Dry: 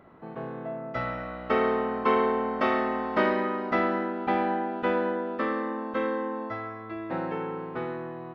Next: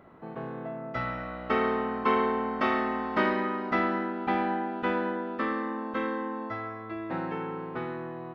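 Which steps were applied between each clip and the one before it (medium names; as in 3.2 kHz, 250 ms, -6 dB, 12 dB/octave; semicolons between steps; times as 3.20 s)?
dynamic bell 550 Hz, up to -6 dB, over -40 dBFS, Q 2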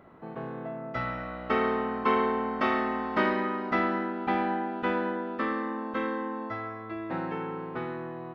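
no audible change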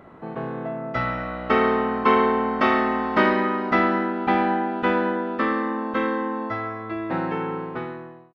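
fade out at the end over 0.80 s; resampled via 22.05 kHz; trim +7 dB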